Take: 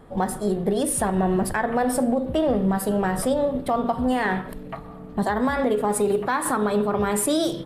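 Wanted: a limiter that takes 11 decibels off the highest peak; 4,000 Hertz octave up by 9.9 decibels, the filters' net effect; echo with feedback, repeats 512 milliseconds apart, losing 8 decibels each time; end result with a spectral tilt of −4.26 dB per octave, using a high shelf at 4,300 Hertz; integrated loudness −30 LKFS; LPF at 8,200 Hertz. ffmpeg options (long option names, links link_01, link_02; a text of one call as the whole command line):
ffmpeg -i in.wav -af "lowpass=8200,equalizer=frequency=4000:width_type=o:gain=9,highshelf=frequency=4300:gain=6,alimiter=limit=-19dB:level=0:latency=1,aecho=1:1:512|1024|1536|2048|2560:0.398|0.159|0.0637|0.0255|0.0102,volume=-3dB" out.wav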